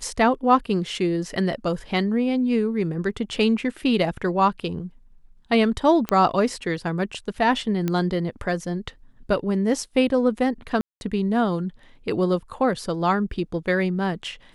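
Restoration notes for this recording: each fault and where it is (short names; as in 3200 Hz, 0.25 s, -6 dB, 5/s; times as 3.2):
6.09 pop -10 dBFS
7.88 pop -12 dBFS
10.81–11.01 gap 0.201 s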